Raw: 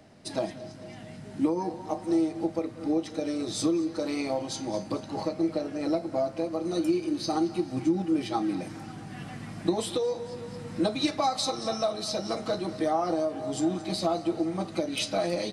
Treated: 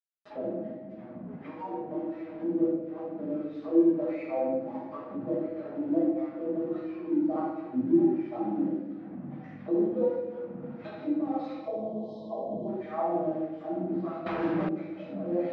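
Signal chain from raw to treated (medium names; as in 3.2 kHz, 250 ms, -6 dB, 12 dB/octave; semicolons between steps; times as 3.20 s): wah-wah 1.5 Hz 210–2300 Hz, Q 2.7; crossover distortion -52.5 dBFS; 11.54–12.68 s: brick-wall FIR band-stop 1.1–3 kHz; simulated room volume 400 m³, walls mixed, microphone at 6.3 m; upward compressor, threshold -25 dBFS; high-pass 130 Hz 12 dB/octave; tape spacing loss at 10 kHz 42 dB; 14.26–14.69 s: spectrum-flattening compressor 2:1; trim -6 dB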